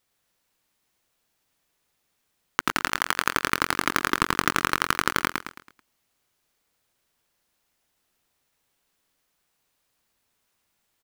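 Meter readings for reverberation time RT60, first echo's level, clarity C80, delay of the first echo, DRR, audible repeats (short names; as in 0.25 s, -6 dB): none, -4.5 dB, none, 0.109 s, none, 4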